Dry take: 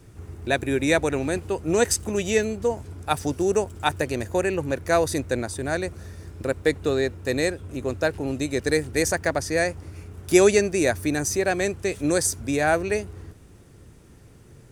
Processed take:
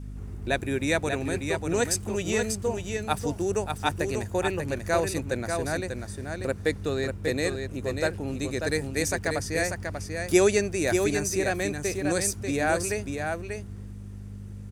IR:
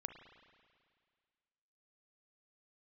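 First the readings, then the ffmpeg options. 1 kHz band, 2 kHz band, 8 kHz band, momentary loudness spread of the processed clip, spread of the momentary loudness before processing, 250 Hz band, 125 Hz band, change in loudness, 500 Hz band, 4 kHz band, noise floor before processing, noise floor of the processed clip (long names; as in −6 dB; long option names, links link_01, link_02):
−3.0 dB, −2.5 dB, −2.5 dB, 10 LU, 9 LU, −3.5 dB, −0.5 dB, −3.5 dB, −4.0 dB, −2.5 dB, −50 dBFS, −39 dBFS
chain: -filter_complex "[0:a]adynamicequalizer=threshold=0.0251:dfrequency=450:dqfactor=0.8:tfrequency=450:tqfactor=0.8:attack=5:release=100:ratio=0.375:range=2:mode=cutabove:tftype=bell,aeval=exprs='val(0)+0.0224*(sin(2*PI*50*n/s)+sin(2*PI*2*50*n/s)/2+sin(2*PI*3*50*n/s)/3+sin(2*PI*4*50*n/s)/4+sin(2*PI*5*50*n/s)/5)':channel_layout=same,asplit=2[link_01][link_02];[link_02]aecho=0:1:590:0.531[link_03];[link_01][link_03]amix=inputs=2:normalize=0,volume=-3.5dB"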